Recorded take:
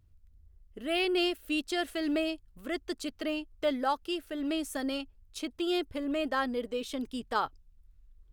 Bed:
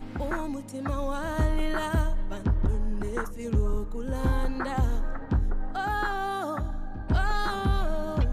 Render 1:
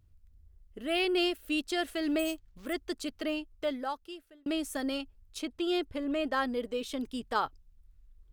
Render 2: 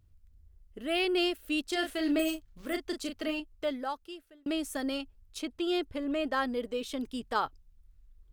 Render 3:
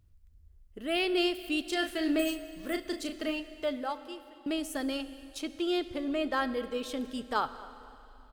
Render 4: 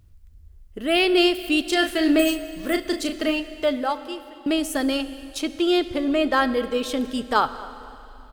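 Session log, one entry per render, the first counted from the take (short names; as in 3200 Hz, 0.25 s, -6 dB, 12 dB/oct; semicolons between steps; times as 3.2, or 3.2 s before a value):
2.19–2.73 careless resampling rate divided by 4×, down none, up hold; 3.33–4.46 fade out; 5.42–6.33 high shelf 8000 Hz -6.5 dB
1.66–3.4 doubler 35 ms -6 dB
outdoor echo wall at 40 m, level -21 dB; plate-style reverb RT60 2.9 s, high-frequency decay 1×, DRR 12.5 dB
gain +10 dB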